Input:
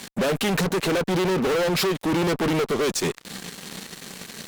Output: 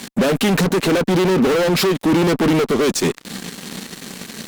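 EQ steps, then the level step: peaking EQ 250 Hz +6 dB 0.84 oct; +4.5 dB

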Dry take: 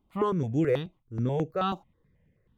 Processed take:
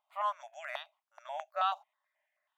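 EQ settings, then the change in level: brick-wall FIR high-pass 580 Hz; treble shelf 5.1 kHz -6 dB; 0.0 dB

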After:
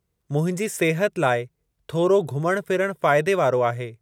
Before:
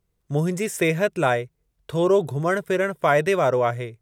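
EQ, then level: high-pass 51 Hz; 0.0 dB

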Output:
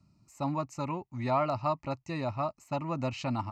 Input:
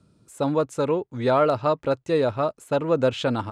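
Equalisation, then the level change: static phaser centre 2.3 kHz, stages 8; -3.5 dB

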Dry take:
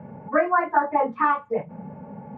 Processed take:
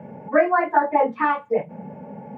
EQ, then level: high-pass 310 Hz 6 dB/octave; peaking EQ 1.2 kHz -9.5 dB 0.76 oct; +6.5 dB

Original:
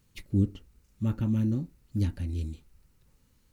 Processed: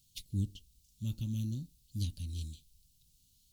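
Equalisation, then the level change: FFT filter 150 Hz 0 dB, 320 Hz -10 dB, 1.7 kHz -23 dB, 3.3 kHz +12 dB; -7.0 dB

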